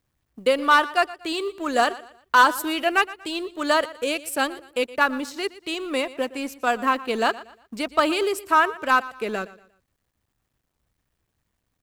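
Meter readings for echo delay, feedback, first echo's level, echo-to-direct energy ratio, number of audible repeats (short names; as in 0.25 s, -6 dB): 0.118 s, 34%, -18.0 dB, -17.5 dB, 2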